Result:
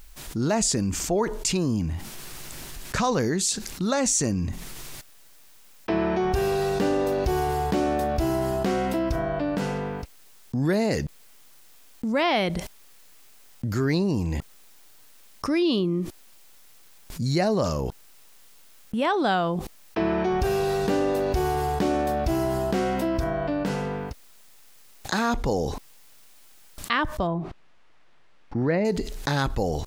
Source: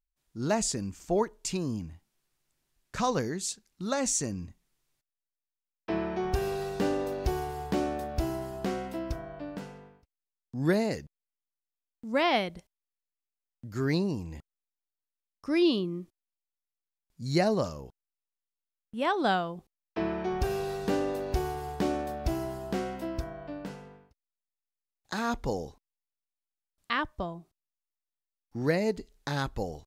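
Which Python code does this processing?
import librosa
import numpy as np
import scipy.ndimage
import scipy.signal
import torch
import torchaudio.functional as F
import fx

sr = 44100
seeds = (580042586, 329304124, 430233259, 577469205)

y = fx.lowpass(x, sr, hz=2300.0, slope=12, at=(27.27, 28.85))
y = fx.env_flatten(y, sr, amount_pct=70)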